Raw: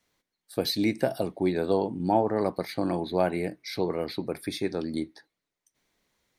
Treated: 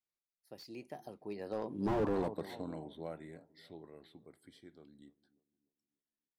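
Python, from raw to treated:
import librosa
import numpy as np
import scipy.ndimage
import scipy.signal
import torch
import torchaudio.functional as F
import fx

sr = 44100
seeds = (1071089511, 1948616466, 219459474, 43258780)

y = fx.doppler_pass(x, sr, speed_mps=37, closest_m=3.3, pass_at_s=2.01)
y = fx.echo_bbd(y, sr, ms=296, stages=2048, feedback_pct=39, wet_db=-20.0)
y = fx.slew_limit(y, sr, full_power_hz=13.0)
y = F.gain(torch.from_numpy(y), 1.5).numpy()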